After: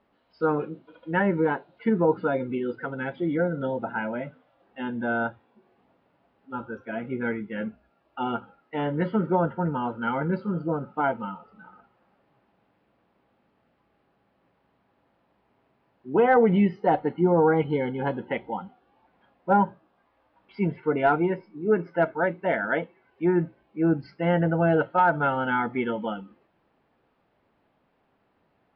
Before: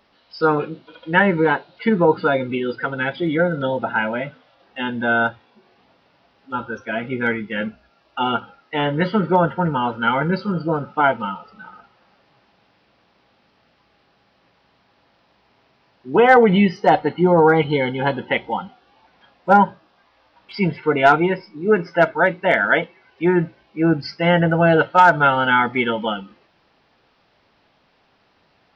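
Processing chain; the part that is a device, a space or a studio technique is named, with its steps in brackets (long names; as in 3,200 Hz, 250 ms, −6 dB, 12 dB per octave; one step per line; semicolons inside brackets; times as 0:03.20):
phone in a pocket (low-pass filter 3,100 Hz 12 dB per octave; parametric band 280 Hz +3 dB 1.7 octaves; high-shelf EQ 2,000 Hz −8.5 dB)
level −7.5 dB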